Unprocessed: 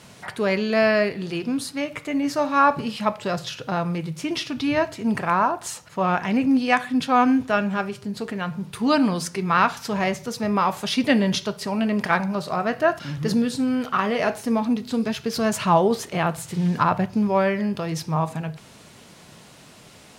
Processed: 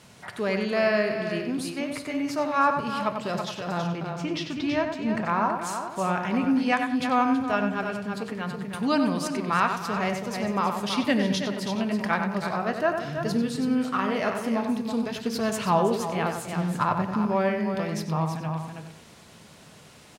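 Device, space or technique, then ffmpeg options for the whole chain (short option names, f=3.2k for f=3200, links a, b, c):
ducked delay: -filter_complex "[0:a]asettb=1/sr,asplit=3[a][b][c];[a]atrim=end=3.794[d];[b]atrim=start=3.79:end=5.34,asetpts=PTS-STARTPTS,afade=t=in:d=0.004:c=qsin,afade=t=out:st=1.546:d=0.004:c=qsin,equalizer=f=11k:w=1.4:g=-14.5[e];[c]atrim=start=5.336[f];[d][e]acrossfade=d=0.004:c1=hsin:c2=qsin[g];[g][f]acrossfade=d=0.004:c1=qsin:c2=hsin,asplit=2[h][i];[i]adelay=94,lowpass=f=3k:p=1,volume=-6dB,asplit=2[j][k];[k]adelay=94,lowpass=f=3k:p=1,volume=0.34,asplit=2[l][m];[m]adelay=94,lowpass=f=3k:p=1,volume=0.34,asplit=2[n][o];[o]adelay=94,lowpass=f=3k:p=1,volume=0.34[p];[h][j][l][n][p]amix=inputs=5:normalize=0,asplit=3[q][r][s];[r]adelay=326,volume=-4dB[t];[s]apad=whole_len=933072[u];[t][u]sidechaincompress=threshold=-21dB:ratio=8:attack=42:release=1110[v];[q][v]amix=inputs=2:normalize=0,volume=-5dB"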